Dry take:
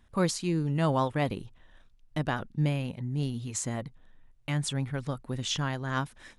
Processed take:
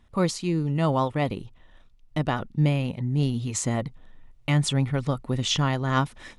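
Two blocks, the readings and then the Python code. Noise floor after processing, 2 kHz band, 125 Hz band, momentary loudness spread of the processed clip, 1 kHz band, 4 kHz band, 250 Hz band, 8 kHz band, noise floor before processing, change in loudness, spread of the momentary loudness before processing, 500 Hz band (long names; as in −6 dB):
−55 dBFS, +3.5 dB, +6.0 dB, 6 LU, +4.5 dB, +5.5 dB, +5.0 dB, +3.5 dB, −60 dBFS, +5.0 dB, 8 LU, +4.5 dB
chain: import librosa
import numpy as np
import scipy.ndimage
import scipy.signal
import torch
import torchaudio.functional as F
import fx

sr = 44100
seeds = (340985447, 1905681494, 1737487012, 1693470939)

y = fx.high_shelf(x, sr, hz=8000.0, db=-7.5)
y = fx.notch(y, sr, hz=1600.0, q=7.7)
y = fx.rider(y, sr, range_db=10, speed_s=2.0)
y = y * 10.0 ** (5.5 / 20.0)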